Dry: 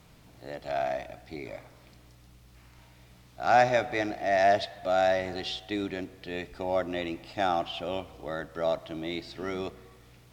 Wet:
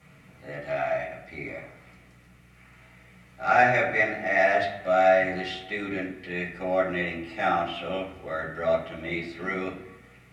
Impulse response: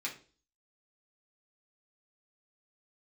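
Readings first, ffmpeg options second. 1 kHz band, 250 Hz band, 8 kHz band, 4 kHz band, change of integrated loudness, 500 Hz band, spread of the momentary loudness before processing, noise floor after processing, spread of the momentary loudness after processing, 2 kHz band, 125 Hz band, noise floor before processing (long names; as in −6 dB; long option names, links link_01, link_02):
+2.5 dB, +1.5 dB, can't be measured, −2.0 dB, +3.0 dB, +2.5 dB, 17 LU, −54 dBFS, 16 LU, +8.0 dB, +3.5 dB, −56 dBFS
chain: -filter_complex "[0:a]equalizer=frequency=1000:width_type=o:width=1:gain=-7,equalizer=frequency=2000:width_type=o:width=1:gain=8,equalizer=frequency=4000:width_type=o:width=1:gain=-9[link_01];[1:a]atrim=start_sample=2205,asetrate=24255,aresample=44100[link_02];[link_01][link_02]afir=irnorm=-1:irlink=0,volume=-1.5dB"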